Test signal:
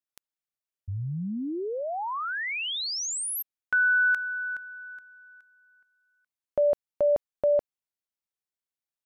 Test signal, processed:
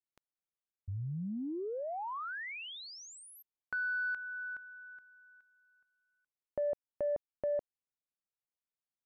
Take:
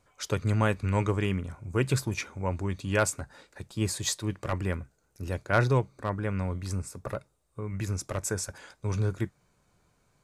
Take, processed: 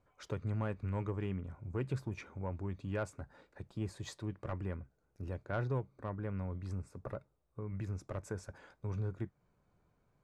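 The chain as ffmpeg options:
-af "lowpass=f=1.1k:p=1,acompressor=threshold=-33dB:ratio=1.5:attack=3.9:release=595:knee=1:detection=peak,asoftclip=type=tanh:threshold=-19dB,volume=-4.5dB"

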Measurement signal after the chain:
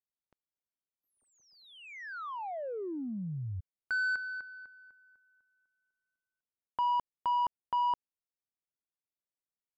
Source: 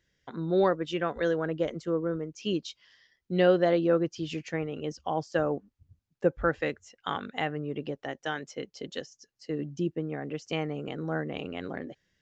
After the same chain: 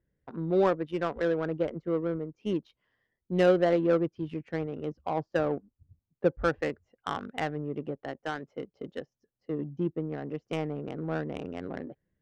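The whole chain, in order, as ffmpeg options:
-af "adynamicsmooth=sensitivity=2:basefreq=920"

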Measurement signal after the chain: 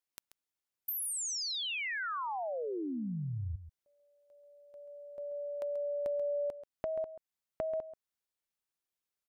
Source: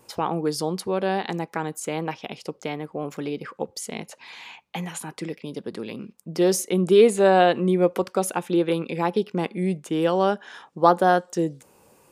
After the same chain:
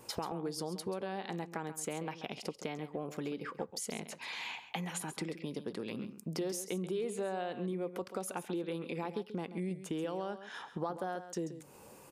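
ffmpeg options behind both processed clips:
-filter_complex "[0:a]asplit=2[a][b];[b]alimiter=limit=-15dB:level=0:latency=1:release=21,volume=2.5dB[c];[a][c]amix=inputs=2:normalize=0,acompressor=threshold=-30dB:ratio=5,aecho=1:1:135:0.251,volume=-6.5dB"

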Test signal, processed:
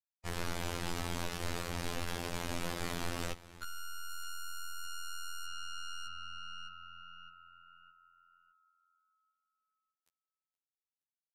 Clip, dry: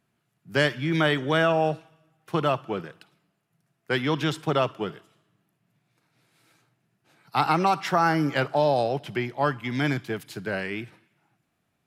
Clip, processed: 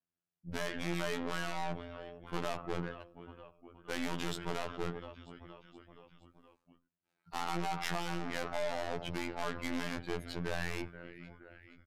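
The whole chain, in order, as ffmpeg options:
-filter_complex "[0:a]afftdn=nr=26:nf=-42,acompressor=threshold=-23dB:ratio=16,asplit=5[a][b][c][d][e];[b]adelay=471,afreqshift=-40,volume=-23.5dB[f];[c]adelay=942,afreqshift=-80,volume=-28.1dB[g];[d]adelay=1413,afreqshift=-120,volume=-32.7dB[h];[e]adelay=1884,afreqshift=-160,volume=-37.2dB[i];[a][f][g][h][i]amix=inputs=5:normalize=0,aeval=exprs='(tanh(100*val(0)+0.5)-tanh(0.5))/100':c=same,afftfilt=real='hypot(re,im)*cos(PI*b)':imag='0':win_size=2048:overlap=0.75,aresample=32000,aresample=44100,volume=8dB"

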